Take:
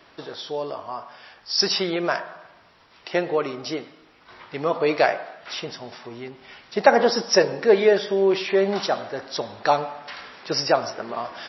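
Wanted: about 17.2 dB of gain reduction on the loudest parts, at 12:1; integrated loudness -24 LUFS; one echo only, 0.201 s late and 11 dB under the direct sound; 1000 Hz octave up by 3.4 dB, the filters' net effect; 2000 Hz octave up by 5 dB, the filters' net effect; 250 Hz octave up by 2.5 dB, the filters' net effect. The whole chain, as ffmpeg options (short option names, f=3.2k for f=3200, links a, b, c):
-af "equalizer=f=250:t=o:g=3.5,equalizer=f=1k:t=o:g=3.5,equalizer=f=2k:t=o:g=5,acompressor=threshold=-23dB:ratio=12,aecho=1:1:201:0.282,volume=5dB"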